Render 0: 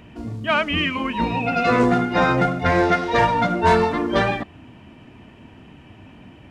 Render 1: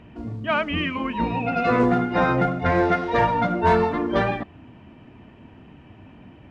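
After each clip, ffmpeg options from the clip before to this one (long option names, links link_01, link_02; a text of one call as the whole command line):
ffmpeg -i in.wav -af "lowpass=frequency=2100:poles=1,volume=-1.5dB" out.wav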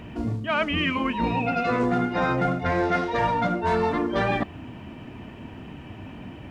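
ffmpeg -i in.wav -af "highshelf=frequency=5500:gain=10,areverse,acompressor=threshold=-28dB:ratio=5,areverse,volume=6.5dB" out.wav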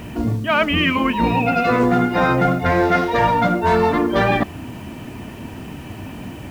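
ffmpeg -i in.wav -af "acrusher=bits=8:mix=0:aa=0.000001,volume=7dB" out.wav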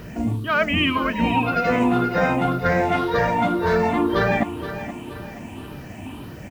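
ffmpeg -i in.wav -af "afftfilt=real='re*pow(10,9/40*sin(2*PI*(0.59*log(max(b,1)*sr/1024/100)/log(2)-(1.9)*(pts-256)/sr)))':imag='im*pow(10,9/40*sin(2*PI*(0.59*log(max(b,1)*sr/1024/100)/log(2)-(1.9)*(pts-256)/sr)))':win_size=1024:overlap=0.75,aecho=1:1:474|948|1422|1896:0.251|0.111|0.0486|0.0214,volume=-4.5dB" out.wav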